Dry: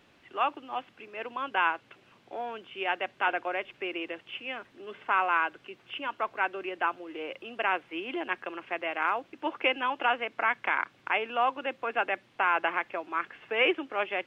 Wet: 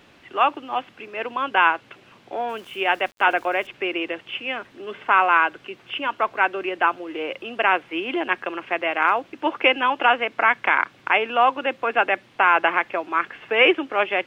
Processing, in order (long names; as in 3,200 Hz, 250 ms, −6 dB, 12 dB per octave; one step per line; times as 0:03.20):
0:02.49–0:03.67: centre clipping without the shift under −53.5 dBFS
level +9 dB